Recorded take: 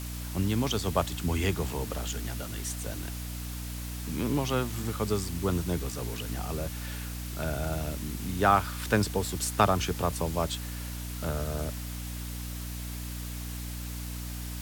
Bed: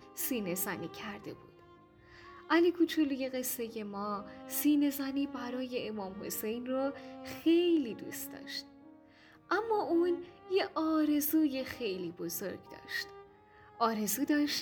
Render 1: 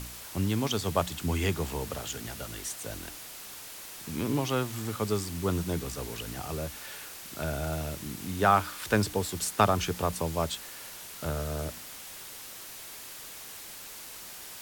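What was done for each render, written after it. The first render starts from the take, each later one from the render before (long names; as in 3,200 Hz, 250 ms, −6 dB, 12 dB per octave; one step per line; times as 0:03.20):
hum removal 60 Hz, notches 5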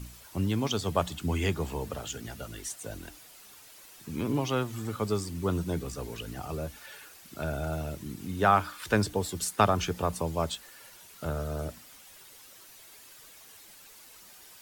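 broadband denoise 10 dB, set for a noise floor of −44 dBFS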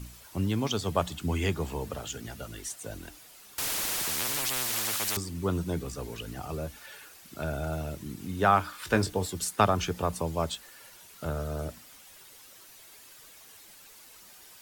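0:03.58–0:05.17: every bin compressed towards the loudest bin 10 to 1
0:08.71–0:09.27: double-tracking delay 22 ms −9 dB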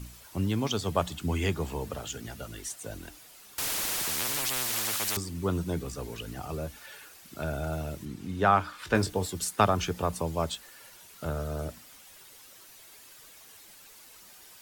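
0:08.05–0:08.95: high-shelf EQ 8,400 Hz −11.5 dB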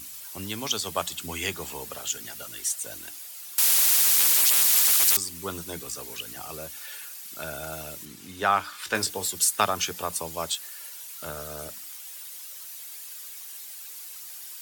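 spectral tilt +3.5 dB per octave
mains-hum notches 60/120/180 Hz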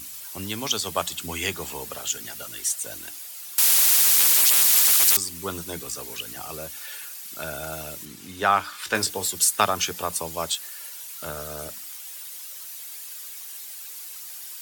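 level +2.5 dB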